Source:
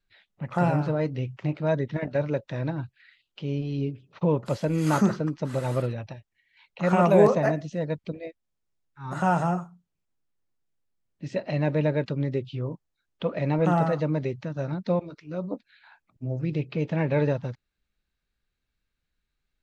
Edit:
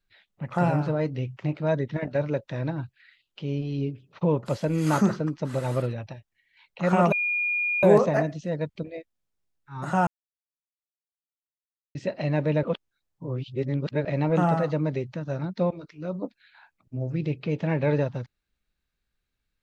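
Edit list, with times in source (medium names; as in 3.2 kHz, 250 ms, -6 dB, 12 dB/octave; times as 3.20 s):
7.12 s: add tone 2.43 kHz -23 dBFS 0.71 s
9.36–11.24 s: mute
11.92–13.34 s: reverse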